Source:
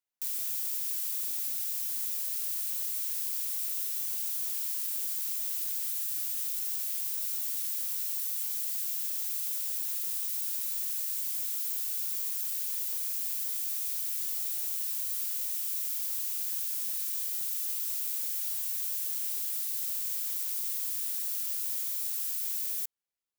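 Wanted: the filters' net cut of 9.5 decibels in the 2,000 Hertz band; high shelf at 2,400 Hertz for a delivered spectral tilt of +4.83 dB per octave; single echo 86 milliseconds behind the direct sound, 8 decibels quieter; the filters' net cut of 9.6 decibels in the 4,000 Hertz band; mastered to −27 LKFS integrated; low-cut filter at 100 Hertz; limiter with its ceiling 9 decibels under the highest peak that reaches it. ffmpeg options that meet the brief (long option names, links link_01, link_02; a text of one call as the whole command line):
ffmpeg -i in.wav -af "highpass=100,equalizer=frequency=2000:width_type=o:gain=-7.5,highshelf=frequency=2400:gain=-5,equalizer=frequency=4000:width_type=o:gain=-6,alimiter=level_in=9.5dB:limit=-24dB:level=0:latency=1,volume=-9.5dB,aecho=1:1:86:0.398,volume=12.5dB" out.wav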